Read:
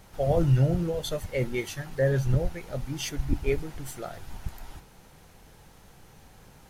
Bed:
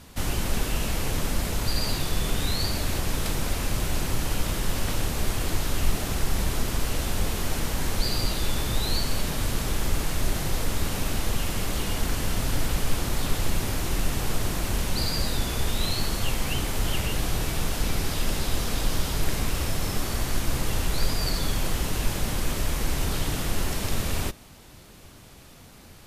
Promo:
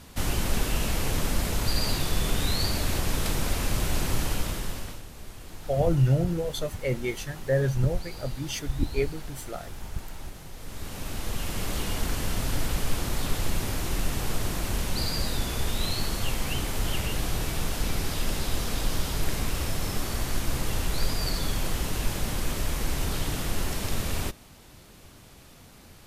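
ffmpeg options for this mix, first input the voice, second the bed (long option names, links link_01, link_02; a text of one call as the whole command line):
ffmpeg -i stem1.wav -i stem2.wav -filter_complex "[0:a]adelay=5500,volume=0dB[link_01];[1:a]volume=14.5dB,afade=type=out:start_time=4.2:duration=0.82:silence=0.149624,afade=type=in:start_time=10.56:duration=1.17:silence=0.188365[link_02];[link_01][link_02]amix=inputs=2:normalize=0" out.wav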